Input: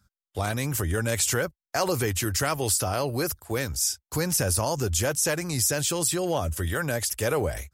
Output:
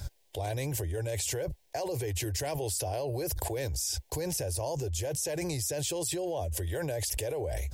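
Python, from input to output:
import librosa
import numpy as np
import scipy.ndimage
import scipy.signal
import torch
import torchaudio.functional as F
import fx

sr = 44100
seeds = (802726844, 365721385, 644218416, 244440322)

y = fx.high_shelf(x, sr, hz=3000.0, db=-9.5)
y = fx.fixed_phaser(y, sr, hz=530.0, stages=4)
y = fx.env_flatten(y, sr, amount_pct=100)
y = y * 10.0 ** (-8.0 / 20.0)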